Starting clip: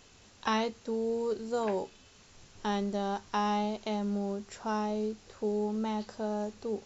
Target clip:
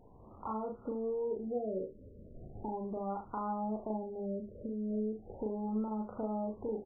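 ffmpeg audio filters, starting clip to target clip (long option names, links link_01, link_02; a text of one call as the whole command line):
ffmpeg -i in.wav -filter_complex "[0:a]dynaudnorm=framelen=120:gausssize=5:maxgain=6dB,alimiter=limit=-20.5dB:level=0:latency=1:release=324,acompressor=threshold=-39dB:ratio=3,asoftclip=type=tanh:threshold=-29dB,asplit=2[link_01][link_02];[link_02]aecho=0:1:37|71:0.668|0.299[link_03];[link_01][link_03]amix=inputs=2:normalize=0,afftfilt=real='re*lt(b*sr/1024,610*pow(1500/610,0.5+0.5*sin(2*PI*0.37*pts/sr)))':imag='im*lt(b*sr/1024,610*pow(1500/610,0.5+0.5*sin(2*PI*0.37*pts/sr)))':win_size=1024:overlap=0.75,volume=1.5dB" out.wav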